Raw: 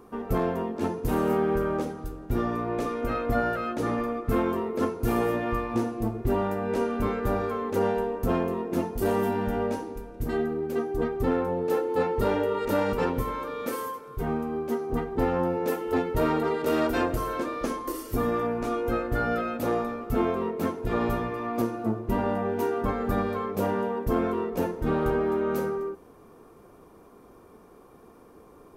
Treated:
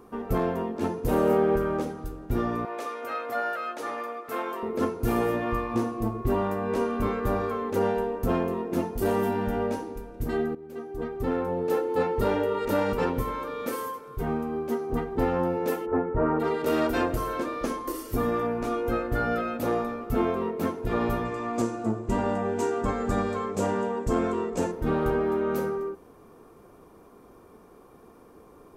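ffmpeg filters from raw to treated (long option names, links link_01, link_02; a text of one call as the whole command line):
ffmpeg -i in.wav -filter_complex "[0:a]asettb=1/sr,asplit=3[link_01][link_02][link_03];[link_01]atrim=end=1.064[link_04];[link_02]atrim=start=1.06:end=1.56,asetpts=PTS-STARTPTS,afade=type=in:duration=0.004:curve=qsin,afade=type=out:start_time=0.496:duration=0.004:curve=qsin,equalizer=frequency=540:width_type=o:width=0.59:gain=8.5[link_05];[link_03]atrim=start=1.556[link_06];[link_04][link_05]acrossfade=duration=0.004:curve1=hsin:curve2=qsin[link_07];[link_07][link_06]acrossfade=duration=0.004:curve1=qsin:curve2=hsin,asettb=1/sr,asplit=3[link_08][link_09][link_10];[link_08]atrim=end=2.654[link_11];[link_09]atrim=start=2.65:end=4.63,asetpts=PTS-STARTPTS,afade=type=in:duration=0.004:curve=qsin,afade=type=out:start_time=1.976:duration=0.004:curve=qsin,highpass=610[link_12];[link_10]atrim=start=4.626[link_13];[link_11][link_12]acrossfade=duration=0.004:curve1=hsin:curve2=qsin[link_14];[link_14][link_13]acrossfade=duration=0.004:curve1=qsin:curve2=hsin,asettb=1/sr,asplit=3[link_15][link_16][link_17];[link_15]atrim=end=5.414[link_18];[link_16]atrim=start=5.41:end=7.55,asetpts=PTS-STARTPTS,afade=type=in:duration=0.004:curve=qsin,afade=type=out:start_time=2.136:duration=0.004:curve=qsin,aeval=exprs='val(0)+0.01*sin(2*PI*1100*n/s)':channel_layout=same[link_19];[link_17]atrim=start=7.546[link_20];[link_18][link_19]acrossfade=duration=0.004:curve1=hsin:curve2=qsin[link_21];[link_21][link_20]acrossfade=duration=0.004:curve1=qsin:curve2=hsin,asplit=3[link_22][link_23][link_24];[link_22]afade=type=out:start_time=15.85:duration=0.02[link_25];[link_23]lowpass=frequency=1600:width=0.5412,lowpass=frequency=1600:width=1.3066,afade=type=in:start_time=15.85:duration=0.02,afade=type=out:start_time=16.39:duration=0.02[link_26];[link_24]afade=type=in:start_time=16.39:duration=0.02[link_27];[link_25][link_26][link_27]amix=inputs=3:normalize=0,asettb=1/sr,asplit=3[link_28][link_29][link_30];[link_28]atrim=end=21.254[link_31];[link_29]atrim=start=21.25:end=24.72,asetpts=PTS-STARTPTS,afade=type=in:duration=0.004:curve=qsin,afade=type=out:start_time=3.466:duration=0.004:curve=qsin,lowpass=frequency=7500:width_type=q:width=5.3[link_32];[link_30]atrim=start=24.716[link_33];[link_31][link_32]acrossfade=duration=0.004:curve1=hsin:curve2=qsin[link_34];[link_34][link_33]acrossfade=duration=0.004:curve1=qsin:curve2=hsin,asplit=2[link_35][link_36];[link_35]atrim=end=10.55,asetpts=PTS-STARTPTS,afade=type=out:start_time=10.546:duration=0.004:curve=hsin:silence=0.158489[link_37];[link_36]atrim=start=10.55,asetpts=PTS-STARTPTS,afade=type=in:duration=1.06:silence=0.158489[link_38];[link_37][link_38]concat=n=2:v=0:a=1" out.wav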